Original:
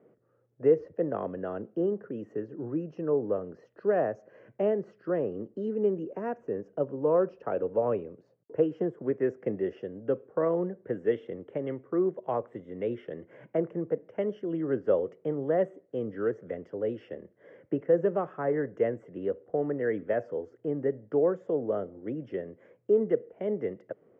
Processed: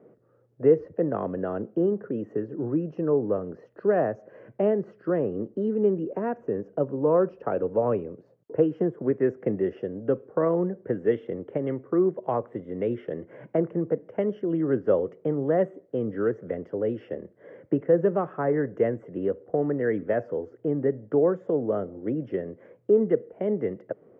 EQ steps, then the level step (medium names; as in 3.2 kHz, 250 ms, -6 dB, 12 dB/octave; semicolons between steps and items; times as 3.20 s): treble shelf 2.6 kHz -11.5 dB; dynamic bell 540 Hz, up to -4 dB, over -34 dBFS, Q 0.99; +7.0 dB